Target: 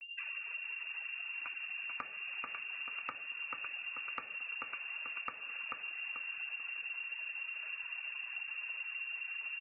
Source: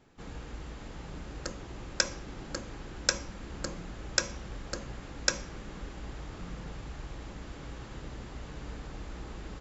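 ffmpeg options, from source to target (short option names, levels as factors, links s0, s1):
-filter_complex "[0:a]afftfilt=real='re*gte(hypot(re,im),0.00282)':imag='im*gte(hypot(re,im),0.00282)':win_size=1024:overlap=0.75,flanger=delay=0.5:depth=4.1:regen=-54:speed=1.1:shape=triangular,equalizer=f=560:t=o:w=0.32:g=-11.5,anlmdn=0.0000398,afftfilt=real='re*gte(hypot(re,im),0.00282)':imag='im*gte(hypot(re,im),0.00282)':win_size=1024:overlap=0.75,lowpass=f=2400:t=q:w=0.5098,lowpass=f=2400:t=q:w=0.6013,lowpass=f=2400:t=q:w=0.9,lowpass=f=2400:t=q:w=2.563,afreqshift=-2800,acompressor=mode=upward:threshold=0.00316:ratio=2.5,asplit=2[s0][s1];[s1]aecho=0:1:438|876|1314|1752:0.531|0.159|0.0478|0.0143[s2];[s0][s2]amix=inputs=2:normalize=0,acompressor=threshold=0.00126:ratio=6,volume=6.68"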